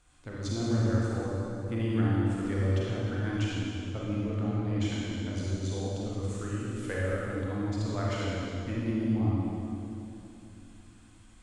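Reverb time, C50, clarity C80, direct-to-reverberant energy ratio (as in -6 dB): 3.0 s, -4.5 dB, -2.5 dB, -6.5 dB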